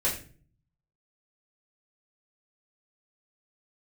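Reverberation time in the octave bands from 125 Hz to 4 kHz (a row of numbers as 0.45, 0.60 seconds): 0.95, 0.70, 0.50, 0.35, 0.40, 0.30 seconds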